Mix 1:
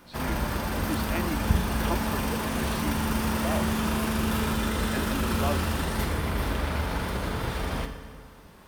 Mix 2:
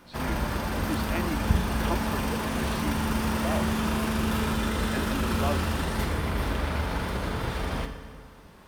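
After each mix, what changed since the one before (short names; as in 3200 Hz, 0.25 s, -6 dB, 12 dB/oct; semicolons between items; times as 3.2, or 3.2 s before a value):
master: add high shelf 9600 Hz -5.5 dB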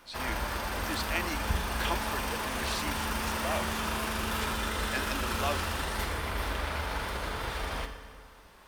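speech: add tilt +4 dB/oct; background: add bell 160 Hz -12.5 dB 2.6 oct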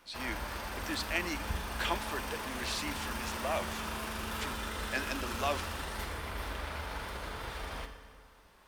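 background -6.0 dB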